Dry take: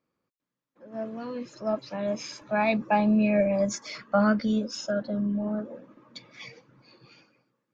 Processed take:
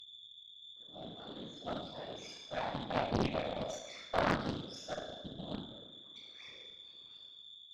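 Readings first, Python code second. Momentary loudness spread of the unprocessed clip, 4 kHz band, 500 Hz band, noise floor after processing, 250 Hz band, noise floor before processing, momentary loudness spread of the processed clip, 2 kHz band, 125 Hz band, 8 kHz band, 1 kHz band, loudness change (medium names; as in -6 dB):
21 LU, -1.0 dB, -11.5 dB, -56 dBFS, -16.0 dB, under -85 dBFS, 17 LU, -9.0 dB, -8.0 dB, no reading, -8.5 dB, -12.5 dB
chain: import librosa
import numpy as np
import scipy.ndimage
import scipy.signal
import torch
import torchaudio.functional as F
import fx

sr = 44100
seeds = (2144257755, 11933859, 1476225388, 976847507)

y = fx.spec_dropout(x, sr, seeds[0], share_pct=28)
y = fx.low_shelf(y, sr, hz=210.0, db=-6.5)
y = fx.comb_fb(y, sr, f0_hz=260.0, decay_s=0.62, harmonics='odd', damping=0.0, mix_pct=80)
y = fx.room_flutter(y, sr, wall_m=6.3, rt60_s=0.95)
y = y + 10.0 ** (-50.0 / 20.0) * np.sin(2.0 * np.pi * 3500.0 * np.arange(len(y)) / sr)
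y = fx.whisperise(y, sr, seeds[1])
y = fx.cheby_harmonics(y, sr, harmonics=(2, 3, 4), levels_db=(-7, -16, -25), full_scale_db=-24.5)
y = fx.doppler_dist(y, sr, depth_ms=0.81)
y = F.gain(torch.from_numpy(y), 4.5).numpy()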